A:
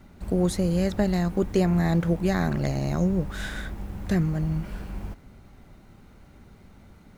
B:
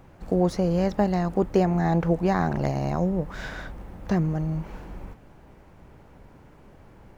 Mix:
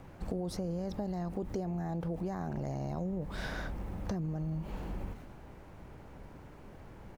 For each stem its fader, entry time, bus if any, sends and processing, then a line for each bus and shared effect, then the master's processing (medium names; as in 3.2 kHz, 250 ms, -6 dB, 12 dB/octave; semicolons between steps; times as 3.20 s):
-13.5 dB, 0.00 s, no send, decay stretcher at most 52 dB/s
-0.5 dB, 0.6 ms, no send, peak limiter -20 dBFS, peak gain reduction 11 dB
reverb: none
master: compression, threshold -33 dBFS, peak gain reduction 11 dB